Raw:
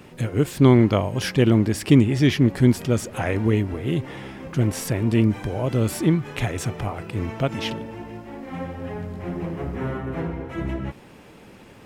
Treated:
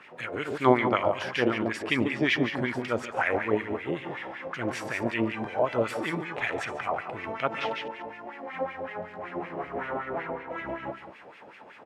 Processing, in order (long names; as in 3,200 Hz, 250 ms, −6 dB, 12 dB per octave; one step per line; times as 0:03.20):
delay that plays each chunk backwards 111 ms, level −10.5 dB
single-tap delay 143 ms −9 dB
auto-filter band-pass sine 5.3 Hz 620–2,300 Hz
level +7 dB